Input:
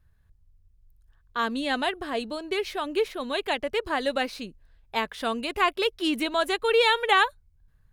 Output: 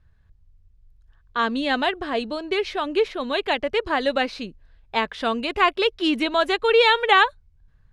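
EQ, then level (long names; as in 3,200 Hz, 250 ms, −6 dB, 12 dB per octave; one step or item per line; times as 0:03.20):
low-pass filter 5,300 Hz 12 dB per octave
+4.5 dB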